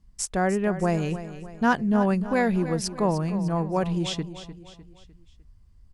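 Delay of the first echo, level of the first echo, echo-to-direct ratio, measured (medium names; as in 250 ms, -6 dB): 302 ms, -13.0 dB, -12.0 dB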